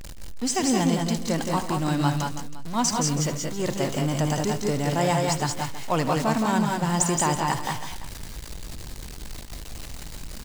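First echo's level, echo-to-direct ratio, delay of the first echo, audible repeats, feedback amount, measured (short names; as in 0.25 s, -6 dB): -13.5 dB, -1.5 dB, 75 ms, 4, no steady repeat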